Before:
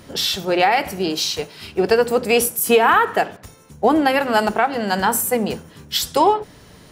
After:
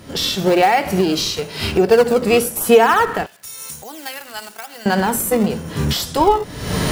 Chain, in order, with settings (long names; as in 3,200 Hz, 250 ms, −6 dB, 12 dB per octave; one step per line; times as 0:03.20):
camcorder AGC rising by 59 dB per second
harmonic and percussive parts rebalanced harmonic +9 dB
in parallel at −12 dB: sample-and-hold swept by an LFO 31×, swing 160% 0.98 Hz
0:03.26–0:04.86: on the sum: first-order pre-emphasis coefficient 0.97
level −6.5 dB